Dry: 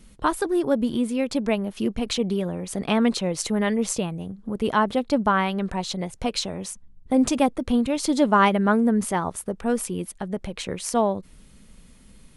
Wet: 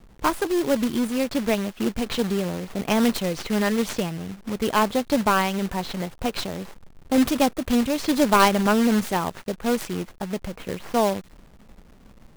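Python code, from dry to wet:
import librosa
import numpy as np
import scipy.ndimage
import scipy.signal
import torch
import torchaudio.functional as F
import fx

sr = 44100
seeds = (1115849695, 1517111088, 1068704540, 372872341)

y = fx.tracing_dist(x, sr, depth_ms=0.38)
y = fx.env_lowpass(y, sr, base_hz=440.0, full_db=-20.0)
y = fx.quant_companded(y, sr, bits=4)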